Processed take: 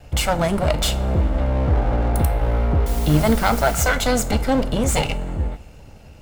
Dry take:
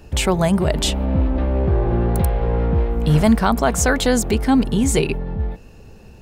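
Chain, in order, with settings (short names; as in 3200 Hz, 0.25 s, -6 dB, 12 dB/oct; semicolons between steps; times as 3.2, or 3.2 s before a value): minimum comb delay 1.4 ms; 2.86–3.81 requantised 6-bit, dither triangular; two-slope reverb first 0.32 s, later 2.1 s, from -19 dB, DRR 9.5 dB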